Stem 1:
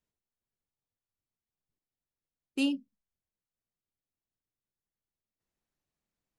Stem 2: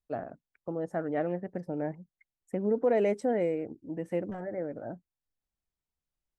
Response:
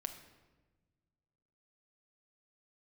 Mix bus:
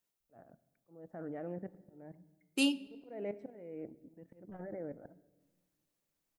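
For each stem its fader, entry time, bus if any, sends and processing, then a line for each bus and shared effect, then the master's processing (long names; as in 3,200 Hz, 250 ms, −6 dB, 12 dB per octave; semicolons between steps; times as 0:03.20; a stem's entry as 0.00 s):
−2.0 dB, 0.00 s, send −4.5 dB, high-pass filter 430 Hz 6 dB per octave; high-shelf EQ 7,600 Hz +9 dB
−7.0 dB, 0.20 s, send −5 dB, low-pass filter 2,600 Hz 12 dB per octave; output level in coarse steps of 13 dB; volume swells 423 ms; automatic ducking −15 dB, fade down 0.55 s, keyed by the first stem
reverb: on, RT60 1.3 s, pre-delay 6 ms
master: low-shelf EQ 450 Hz +3 dB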